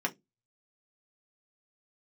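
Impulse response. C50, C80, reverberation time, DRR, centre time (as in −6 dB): 23.5 dB, 32.5 dB, 0.15 s, 0.5 dB, 6 ms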